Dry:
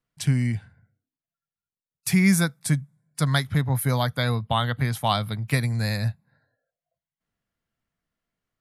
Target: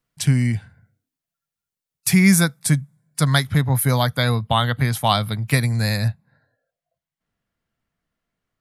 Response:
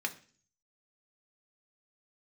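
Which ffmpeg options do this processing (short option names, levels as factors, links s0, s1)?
-af "asetnsamples=n=441:p=0,asendcmd='6.08 highshelf g -5',highshelf=f=5000:g=3.5,volume=1.68"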